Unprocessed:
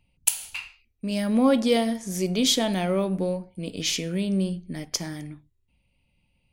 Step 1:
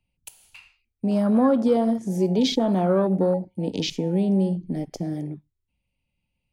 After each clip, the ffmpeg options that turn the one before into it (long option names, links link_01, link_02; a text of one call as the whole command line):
ffmpeg -i in.wav -filter_complex "[0:a]acrossover=split=150|650[link_01][link_02][link_03];[link_01]acompressor=threshold=-48dB:ratio=4[link_04];[link_02]acompressor=threshold=-26dB:ratio=4[link_05];[link_03]acompressor=threshold=-33dB:ratio=4[link_06];[link_04][link_05][link_06]amix=inputs=3:normalize=0,afwtdn=0.0178,volume=7.5dB" out.wav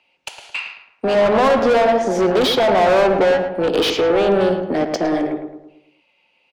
ffmpeg -i in.wav -filter_complex "[0:a]acrossover=split=330 6500:gain=0.0794 1 0.0708[link_01][link_02][link_03];[link_01][link_02][link_03]amix=inputs=3:normalize=0,asplit=2[link_04][link_05];[link_05]highpass=frequency=720:poles=1,volume=29dB,asoftclip=type=tanh:threshold=-12dB[link_06];[link_04][link_06]amix=inputs=2:normalize=0,lowpass=frequency=2500:poles=1,volume=-6dB,asplit=2[link_07][link_08];[link_08]adelay=109,lowpass=frequency=1700:poles=1,volume=-6dB,asplit=2[link_09][link_10];[link_10]adelay=109,lowpass=frequency=1700:poles=1,volume=0.48,asplit=2[link_11][link_12];[link_12]adelay=109,lowpass=frequency=1700:poles=1,volume=0.48,asplit=2[link_13][link_14];[link_14]adelay=109,lowpass=frequency=1700:poles=1,volume=0.48,asplit=2[link_15][link_16];[link_16]adelay=109,lowpass=frequency=1700:poles=1,volume=0.48,asplit=2[link_17][link_18];[link_18]adelay=109,lowpass=frequency=1700:poles=1,volume=0.48[link_19];[link_07][link_09][link_11][link_13][link_15][link_17][link_19]amix=inputs=7:normalize=0,volume=3.5dB" out.wav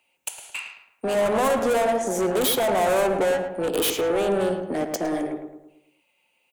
ffmpeg -i in.wav -af "aexciter=amount=10:drive=4.5:freq=7100,volume=-7dB" out.wav